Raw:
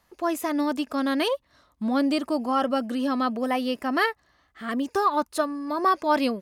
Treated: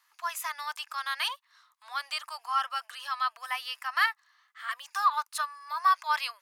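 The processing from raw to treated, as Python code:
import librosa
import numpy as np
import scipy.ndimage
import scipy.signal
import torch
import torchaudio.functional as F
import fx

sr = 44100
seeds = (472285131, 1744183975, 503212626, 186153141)

y = scipy.signal.sosfilt(scipy.signal.butter(6, 1000.0, 'highpass', fs=sr, output='sos'), x)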